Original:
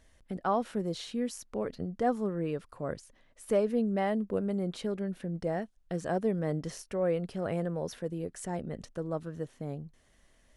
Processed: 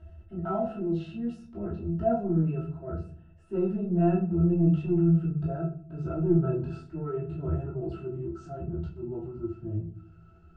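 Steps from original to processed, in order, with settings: gliding pitch shift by -5.5 st starting unshifted; upward compressor, threshold -50 dBFS; octave resonator E, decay 0.14 s; transient shaper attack -6 dB, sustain +4 dB; reverb RT60 0.45 s, pre-delay 3 ms, DRR -8 dB; gain +6 dB

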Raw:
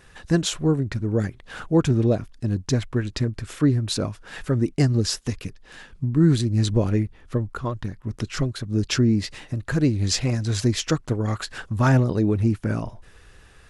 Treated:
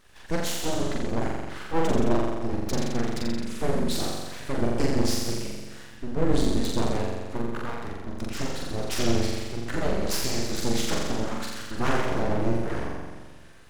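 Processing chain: flutter echo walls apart 7.4 m, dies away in 1.5 s; full-wave rectifier; gain -5.5 dB

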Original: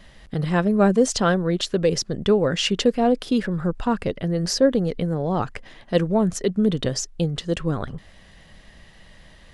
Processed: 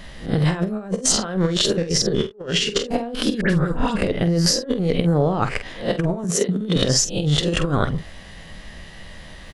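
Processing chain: spectral swells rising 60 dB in 0.32 s; 2.06–2.85 bell 410 Hz +12.5 dB 0.22 oct; 6.24–6.76 elliptic high-pass 170 Hz; negative-ratio compressor -24 dBFS, ratio -0.5; doubler 47 ms -10.5 dB; 3.41–3.96 dispersion highs, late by 88 ms, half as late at 2000 Hz; gain +3 dB

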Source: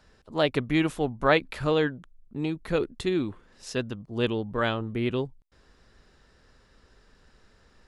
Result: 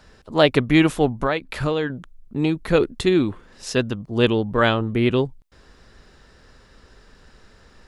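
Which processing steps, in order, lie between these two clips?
1.21–1.9 compressor 5:1, threshold -28 dBFS, peak gain reduction 12 dB; gain +8.5 dB

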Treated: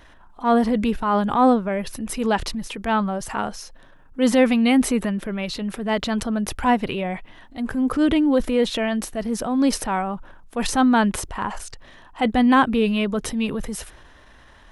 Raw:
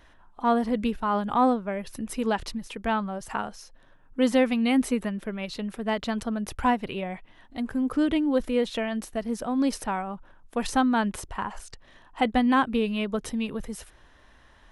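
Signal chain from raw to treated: transient shaper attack -6 dB, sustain +3 dB; gain +6.5 dB

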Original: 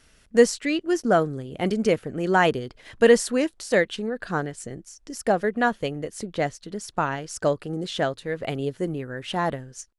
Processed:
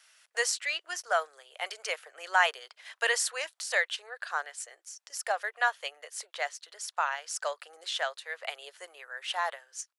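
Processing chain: Bessel high-pass 1100 Hz, order 8

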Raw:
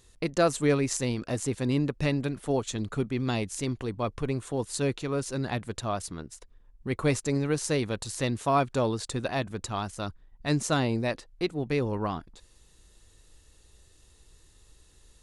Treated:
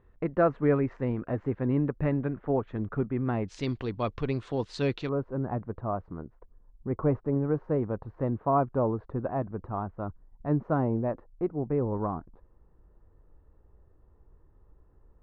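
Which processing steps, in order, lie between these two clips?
LPF 1700 Hz 24 dB/oct, from 3.48 s 4500 Hz, from 5.09 s 1200 Hz

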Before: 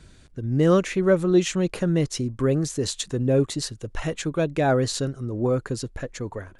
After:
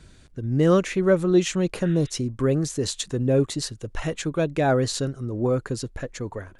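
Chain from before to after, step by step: spectral repair 1.87–2.07, 1200–3900 Hz both

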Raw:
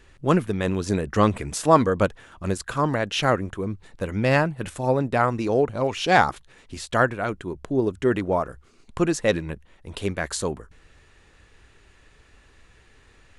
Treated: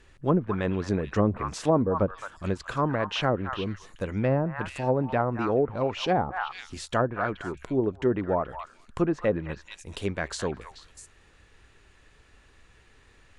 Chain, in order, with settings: delay with a stepping band-pass 0.215 s, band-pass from 1200 Hz, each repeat 1.4 oct, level -6.5 dB; treble ducked by the level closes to 610 Hz, closed at -14.5 dBFS; gain -3 dB

